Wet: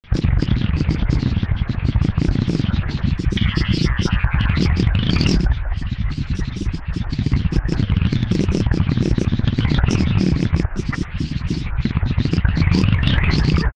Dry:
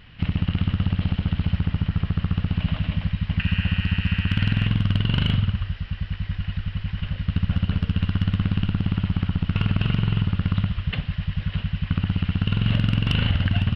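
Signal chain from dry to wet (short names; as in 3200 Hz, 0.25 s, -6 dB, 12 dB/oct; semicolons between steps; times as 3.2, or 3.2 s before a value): grains, grains 24/s, pitch spread up and down by 12 st; gain +7 dB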